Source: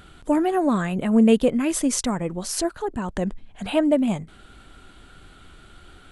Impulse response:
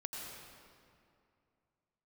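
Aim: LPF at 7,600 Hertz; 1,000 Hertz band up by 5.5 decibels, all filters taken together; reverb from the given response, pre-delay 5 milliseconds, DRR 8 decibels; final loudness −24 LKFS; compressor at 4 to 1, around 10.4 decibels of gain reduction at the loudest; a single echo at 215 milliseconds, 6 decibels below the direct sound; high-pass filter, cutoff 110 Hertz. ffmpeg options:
-filter_complex "[0:a]highpass=110,lowpass=7600,equalizer=frequency=1000:width_type=o:gain=7.5,acompressor=threshold=-25dB:ratio=4,aecho=1:1:215:0.501,asplit=2[link_01][link_02];[1:a]atrim=start_sample=2205,adelay=5[link_03];[link_02][link_03]afir=irnorm=-1:irlink=0,volume=-7.5dB[link_04];[link_01][link_04]amix=inputs=2:normalize=0,volume=3dB"

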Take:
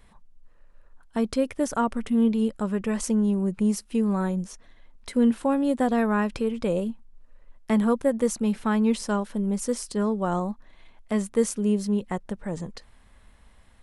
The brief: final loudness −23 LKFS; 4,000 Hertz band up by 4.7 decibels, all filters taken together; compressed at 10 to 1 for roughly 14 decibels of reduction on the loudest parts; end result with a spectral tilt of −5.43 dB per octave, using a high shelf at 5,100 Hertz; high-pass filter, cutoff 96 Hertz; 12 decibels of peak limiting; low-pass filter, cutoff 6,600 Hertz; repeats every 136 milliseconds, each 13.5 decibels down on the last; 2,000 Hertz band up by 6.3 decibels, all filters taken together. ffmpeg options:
ffmpeg -i in.wav -af "highpass=96,lowpass=6600,equalizer=frequency=2000:width_type=o:gain=7.5,equalizer=frequency=4000:width_type=o:gain=8,highshelf=frequency=5100:gain=-7.5,acompressor=threshold=-31dB:ratio=10,alimiter=level_in=6.5dB:limit=-24dB:level=0:latency=1,volume=-6.5dB,aecho=1:1:136|272:0.211|0.0444,volume=16.5dB" out.wav

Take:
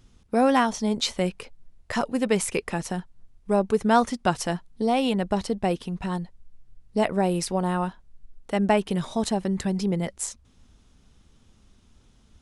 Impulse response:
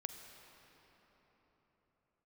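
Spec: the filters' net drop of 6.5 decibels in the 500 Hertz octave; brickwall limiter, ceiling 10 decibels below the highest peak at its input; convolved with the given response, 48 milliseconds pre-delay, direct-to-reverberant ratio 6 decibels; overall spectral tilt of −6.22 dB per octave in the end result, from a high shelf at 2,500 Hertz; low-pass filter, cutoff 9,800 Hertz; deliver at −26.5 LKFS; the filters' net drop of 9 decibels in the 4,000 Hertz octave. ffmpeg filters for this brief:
-filter_complex "[0:a]lowpass=9800,equalizer=frequency=500:width_type=o:gain=-8,highshelf=frequency=2500:gain=-6.5,equalizer=frequency=4000:width_type=o:gain=-6,alimiter=limit=-21.5dB:level=0:latency=1,asplit=2[link_01][link_02];[1:a]atrim=start_sample=2205,adelay=48[link_03];[link_02][link_03]afir=irnorm=-1:irlink=0,volume=-4dB[link_04];[link_01][link_04]amix=inputs=2:normalize=0,volume=5dB"

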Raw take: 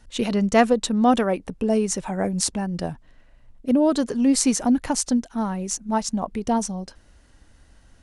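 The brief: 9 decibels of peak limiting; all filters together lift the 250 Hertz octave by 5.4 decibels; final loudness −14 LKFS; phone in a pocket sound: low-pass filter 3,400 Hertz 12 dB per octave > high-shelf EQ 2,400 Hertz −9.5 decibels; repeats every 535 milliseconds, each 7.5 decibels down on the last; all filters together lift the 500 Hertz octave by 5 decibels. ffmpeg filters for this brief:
ffmpeg -i in.wav -af "equalizer=frequency=250:width_type=o:gain=5,equalizer=frequency=500:width_type=o:gain=5.5,alimiter=limit=-9.5dB:level=0:latency=1,lowpass=3400,highshelf=frequency=2400:gain=-9.5,aecho=1:1:535|1070|1605|2140|2675:0.422|0.177|0.0744|0.0312|0.0131,volume=6dB" out.wav

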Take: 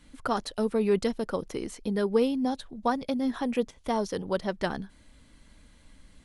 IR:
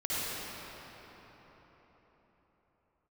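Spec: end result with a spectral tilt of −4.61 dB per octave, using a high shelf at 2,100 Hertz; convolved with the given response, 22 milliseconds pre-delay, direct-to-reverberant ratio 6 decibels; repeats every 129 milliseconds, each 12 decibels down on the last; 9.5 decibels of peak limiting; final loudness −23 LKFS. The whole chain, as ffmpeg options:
-filter_complex "[0:a]highshelf=frequency=2100:gain=3.5,alimiter=limit=-21dB:level=0:latency=1,aecho=1:1:129|258|387:0.251|0.0628|0.0157,asplit=2[link_01][link_02];[1:a]atrim=start_sample=2205,adelay=22[link_03];[link_02][link_03]afir=irnorm=-1:irlink=0,volume=-14.5dB[link_04];[link_01][link_04]amix=inputs=2:normalize=0,volume=8dB"

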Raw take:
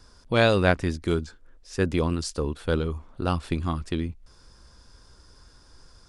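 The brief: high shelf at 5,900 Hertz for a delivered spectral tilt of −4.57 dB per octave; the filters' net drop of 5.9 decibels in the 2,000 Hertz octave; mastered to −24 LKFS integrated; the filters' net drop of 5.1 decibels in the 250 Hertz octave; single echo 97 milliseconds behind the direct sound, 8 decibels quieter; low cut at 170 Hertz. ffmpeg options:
ffmpeg -i in.wav -af "highpass=170,equalizer=frequency=250:width_type=o:gain=-5.5,equalizer=frequency=2000:width_type=o:gain=-7.5,highshelf=frequency=5900:gain=-9,aecho=1:1:97:0.398,volume=5.5dB" out.wav

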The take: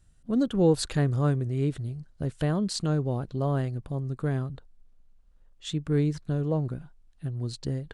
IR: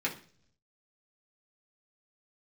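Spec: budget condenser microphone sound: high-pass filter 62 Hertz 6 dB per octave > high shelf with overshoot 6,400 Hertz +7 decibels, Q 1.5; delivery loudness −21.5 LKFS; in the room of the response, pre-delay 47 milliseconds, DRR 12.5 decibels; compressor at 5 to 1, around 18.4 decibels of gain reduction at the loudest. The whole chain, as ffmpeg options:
-filter_complex "[0:a]acompressor=threshold=-38dB:ratio=5,asplit=2[link_01][link_02];[1:a]atrim=start_sample=2205,adelay=47[link_03];[link_02][link_03]afir=irnorm=-1:irlink=0,volume=-19dB[link_04];[link_01][link_04]amix=inputs=2:normalize=0,highpass=frequency=62:poles=1,highshelf=frequency=6400:width_type=q:width=1.5:gain=7,volume=20dB"

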